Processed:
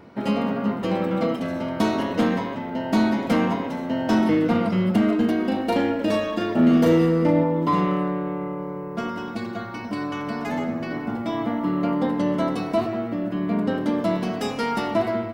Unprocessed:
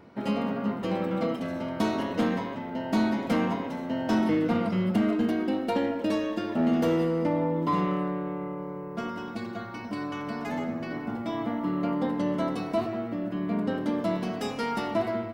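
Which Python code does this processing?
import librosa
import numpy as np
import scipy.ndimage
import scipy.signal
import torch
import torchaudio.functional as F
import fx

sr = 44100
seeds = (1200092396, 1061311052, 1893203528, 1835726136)

y = fx.doubler(x, sr, ms=37.0, db=-4, at=(5.43, 7.42), fade=0.02)
y = y * 10.0 ** (5.0 / 20.0)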